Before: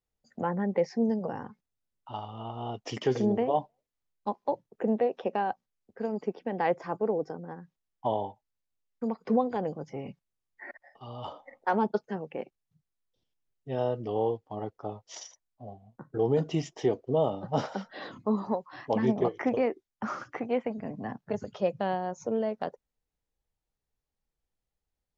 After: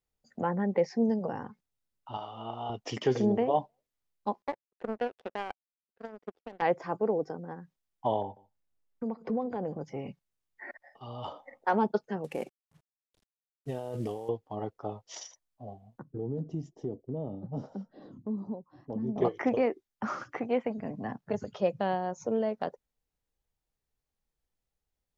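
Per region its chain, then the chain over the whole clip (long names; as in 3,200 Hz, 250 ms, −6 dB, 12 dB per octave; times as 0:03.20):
0:02.17–0:02.70: high-pass filter 350 Hz 6 dB per octave + double-tracking delay 35 ms −3.5 dB
0:04.42–0:06.62: gain on one half-wave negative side −3 dB + high-pass filter 240 Hz 6 dB per octave + power curve on the samples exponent 2
0:08.22–0:09.81: tilt shelving filter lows +5 dB, about 1,500 Hz + downward compressor 2 to 1, threshold −35 dBFS + single-tap delay 146 ms −22.5 dB
0:12.24–0:14.29: variable-slope delta modulation 64 kbit/s + compressor whose output falls as the input rises −36 dBFS
0:16.02–0:19.16: drawn EQ curve 260 Hz 0 dB, 710 Hz −13 dB, 2,300 Hz −28 dB, 6,100 Hz −17 dB + downward compressor 2 to 1, threshold −33 dBFS
whole clip: no processing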